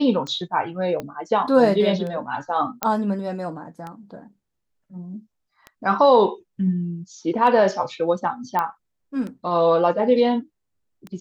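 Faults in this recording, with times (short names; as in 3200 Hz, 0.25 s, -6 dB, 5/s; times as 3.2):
tick 33 1/3 rpm -21 dBFS
1 pop -16 dBFS
2.83 pop -4 dBFS
8.59 pop -11 dBFS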